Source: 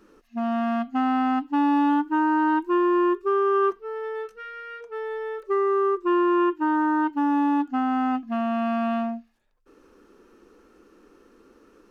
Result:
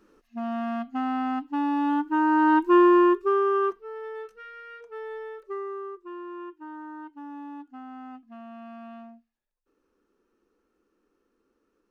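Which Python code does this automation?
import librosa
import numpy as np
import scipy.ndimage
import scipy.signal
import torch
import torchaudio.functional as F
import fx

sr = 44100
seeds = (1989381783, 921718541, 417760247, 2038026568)

y = fx.gain(x, sr, db=fx.line((1.77, -5.0), (2.79, 5.0), (3.87, -5.5), (5.18, -5.5), (6.1, -18.0)))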